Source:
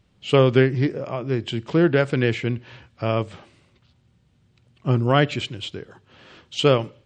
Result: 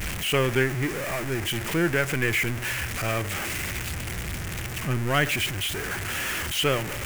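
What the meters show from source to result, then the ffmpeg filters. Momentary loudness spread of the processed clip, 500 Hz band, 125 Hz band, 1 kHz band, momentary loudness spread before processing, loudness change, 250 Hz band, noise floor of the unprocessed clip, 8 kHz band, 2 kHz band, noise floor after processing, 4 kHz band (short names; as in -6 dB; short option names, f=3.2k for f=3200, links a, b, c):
8 LU, -7.5 dB, -5.5 dB, -3.0 dB, 14 LU, -4.5 dB, -6.5 dB, -62 dBFS, n/a, +4.0 dB, -33 dBFS, +1.5 dB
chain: -af "aeval=exprs='val(0)+0.5*0.1*sgn(val(0))':c=same,equalizer=f=125:t=o:w=1:g=-8,equalizer=f=250:t=o:w=1:g=-7,equalizer=f=500:t=o:w=1:g=-8,equalizer=f=1k:t=o:w=1:g=-7,equalizer=f=2k:t=o:w=1:g=5,equalizer=f=4k:t=o:w=1:g=-10"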